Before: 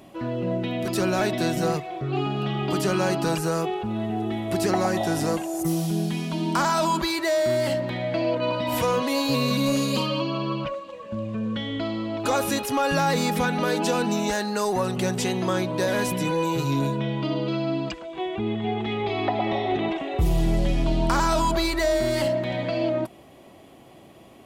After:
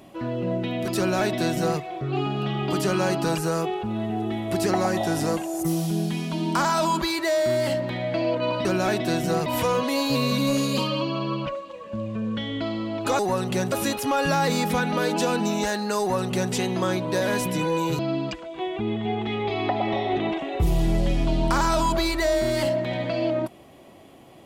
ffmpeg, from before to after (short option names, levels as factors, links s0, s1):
-filter_complex "[0:a]asplit=6[s0][s1][s2][s3][s4][s5];[s0]atrim=end=8.652[s6];[s1]atrim=start=0.978:end=1.792[s7];[s2]atrim=start=8.648:end=12.382[s8];[s3]atrim=start=14.658:end=15.192[s9];[s4]atrim=start=12.378:end=16.652[s10];[s5]atrim=start=17.578[s11];[s6][s7]acrossfade=d=0.004:c1=hsin:c2=hsin[s12];[s12][s8]acrossfade=d=0.004:c1=hsin:c2=hsin[s13];[s13][s9]acrossfade=d=0.004:c1=hsin:c2=hsin[s14];[s14][s10]acrossfade=d=0.004:c1=hsin:c2=hsin[s15];[s15][s11]acrossfade=d=0.004:c1=hsin:c2=hsin"